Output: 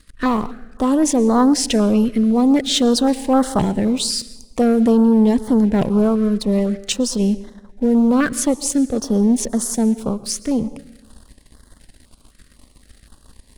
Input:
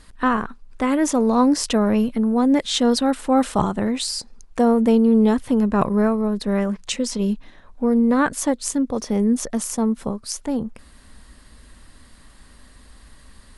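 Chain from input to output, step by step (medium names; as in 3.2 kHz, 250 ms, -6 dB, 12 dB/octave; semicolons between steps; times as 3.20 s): waveshaping leveller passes 2; on a send at -17 dB: reverberation RT60 1.1 s, pre-delay 102 ms; on the sum: step-sequenced notch 3.9 Hz 860–2500 Hz; trim -2.5 dB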